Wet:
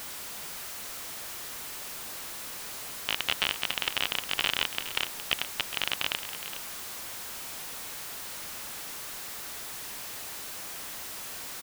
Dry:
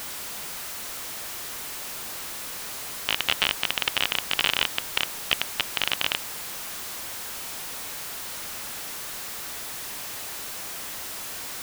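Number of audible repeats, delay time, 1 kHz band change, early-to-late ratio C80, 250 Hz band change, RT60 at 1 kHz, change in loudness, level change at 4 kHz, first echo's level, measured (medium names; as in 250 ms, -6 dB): 1, 415 ms, -4.5 dB, no reverb, -4.0 dB, no reverb, -4.0 dB, -4.5 dB, -12.0 dB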